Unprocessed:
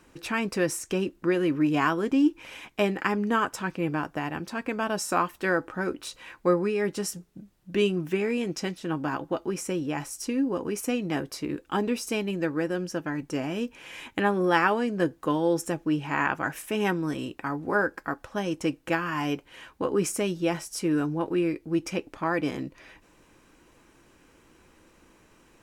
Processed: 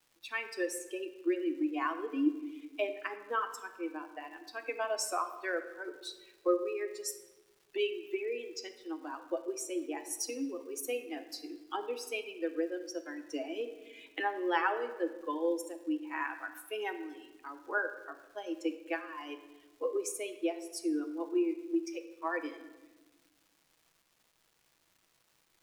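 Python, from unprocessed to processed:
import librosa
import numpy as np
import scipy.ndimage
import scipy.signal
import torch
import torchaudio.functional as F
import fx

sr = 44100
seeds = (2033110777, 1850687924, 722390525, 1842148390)

y = fx.bin_expand(x, sr, power=2.0)
y = fx.recorder_agc(y, sr, target_db=-19.5, rise_db_per_s=6.5, max_gain_db=30)
y = scipy.signal.sosfilt(scipy.signal.butter(12, 290.0, 'highpass', fs=sr, output='sos'), y)
y = fx.dmg_crackle(y, sr, seeds[0], per_s=560.0, level_db=-52.0)
y = fx.room_shoebox(y, sr, seeds[1], volume_m3=790.0, walls='mixed', distance_m=0.65)
y = y * 10.0 ** (-4.5 / 20.0)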